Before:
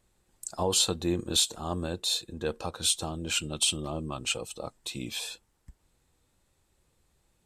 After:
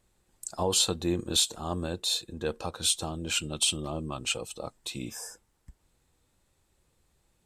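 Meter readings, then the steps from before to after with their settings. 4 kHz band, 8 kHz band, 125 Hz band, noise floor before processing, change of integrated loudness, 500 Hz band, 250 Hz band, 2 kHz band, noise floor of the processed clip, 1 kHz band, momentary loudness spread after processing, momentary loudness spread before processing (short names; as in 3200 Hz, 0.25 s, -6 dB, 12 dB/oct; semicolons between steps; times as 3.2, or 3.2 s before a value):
0.0 dB, 0.0 dB, 0.0 dB, -72 dBFS, 0.0 dB, 0.0 dB, 0.0 dB, 0.0 dB, -72 dBFS, 0.0 dB, 13 LU, 13 LU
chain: spectral repair 5.05–5.42, 1800–4800 Hz both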